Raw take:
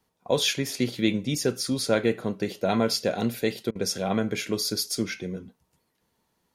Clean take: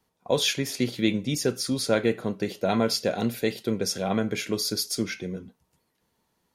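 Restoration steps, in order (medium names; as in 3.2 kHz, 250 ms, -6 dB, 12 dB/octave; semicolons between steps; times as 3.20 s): interpolate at 3.71 s, 43 ms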